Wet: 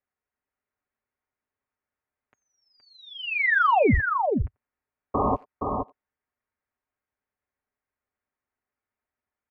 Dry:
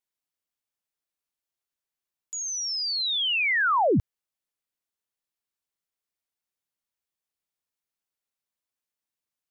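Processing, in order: painted sound noise, 5.14–5.36, 250–1500 Hz -26 dBFS; comb 6 ms, depth 51%; on a send: echo 0.47 s -6 dB; on the sum: mistuned SSB -250 Hz 190–2400 Hz; in parallel at -0.5 dB: compressor 5:1, threshold -33 dBFS, peak gain reduction 14 dB; on the sum: speakerphone echo 90 ms, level -26 dB

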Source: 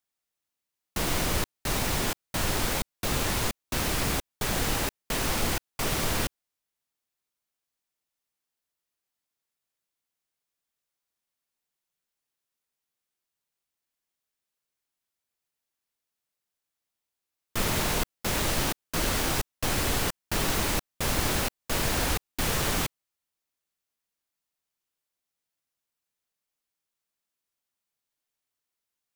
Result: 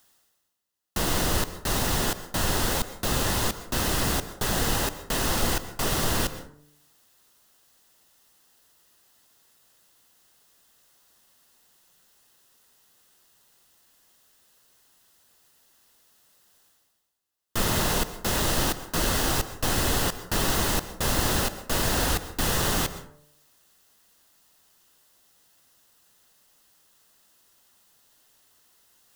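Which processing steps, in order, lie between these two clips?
notch 2300 Hz, Q 5.2; de-hum 147.7 Hz, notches 4; reverse; upward compressor, threshold -46 dBFS; reverse; plate-style reverb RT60 0.53 s, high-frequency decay 0.55×, pre-delay 0.11 s, DRR 13 dB; gain +2.5 dB

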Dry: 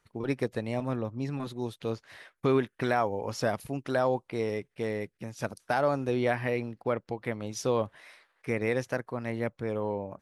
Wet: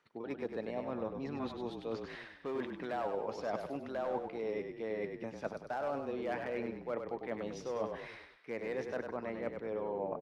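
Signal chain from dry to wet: three-band isolator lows -22 dB, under 170 Hz, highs -20 dB, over 5300 Hz; hard clip -21 dBFS, distortion -18 dB; reverse; compressor 10:1, threshold -40 dBFS, peak gain reduction 16.5 dB; reverse; dynamic EQ 670 Hz, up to +5 dB, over -53 dBFS, Q 0.82; on a send: frequency-shifting echo 99 ms, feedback 45%, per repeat -33 Hz, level -6 dB; on the sum: gain +1.5 dB

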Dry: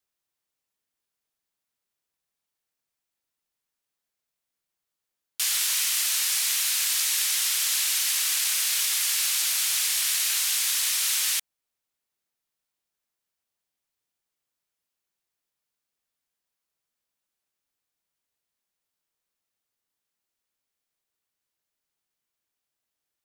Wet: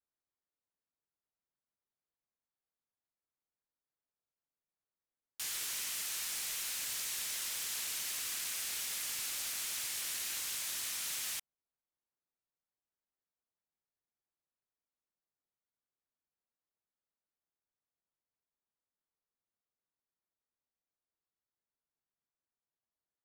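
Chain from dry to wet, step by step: Wiener smoothing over 15 samples; soft clip -27.5 dBFS, distortion -10 dB; gain -7 dB

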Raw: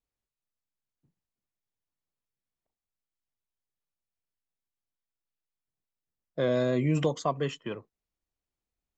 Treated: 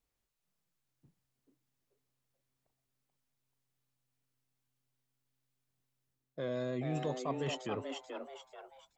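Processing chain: reverse; compressor 4:1, threshold -42 dBFS, peak gain reduction 17 dB; reverse; frequency-shifting echo 0.434 s, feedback 37%, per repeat +130 Hz, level -5.5 dB; gain +5 dB

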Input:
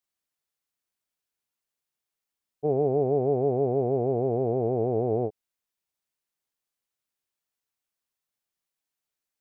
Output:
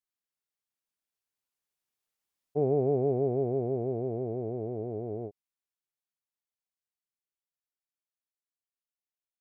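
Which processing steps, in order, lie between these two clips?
Doppler pass-by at 2.49, 15 m/s, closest 15 m; dynamic EQ 780 Hz, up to -4 dB, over -38 dBFS, Q 0.82

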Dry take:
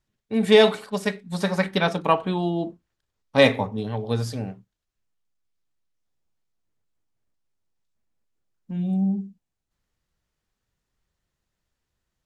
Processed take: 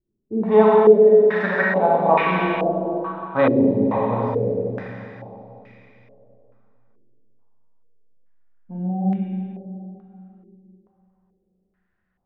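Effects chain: 0.47–1.91 HPF 160 Hz; Schroeder reverb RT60 3.4 s, combs from 33 ms, DRR -5.5 dB; stepped low-pass 2.3 Hz 360–2200 Hz; gain -4.5 dB

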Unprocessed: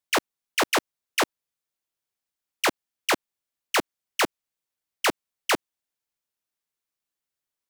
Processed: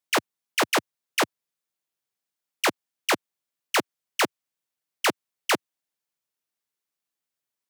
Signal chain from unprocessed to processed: HPF 99 Hz 24 dB/oct

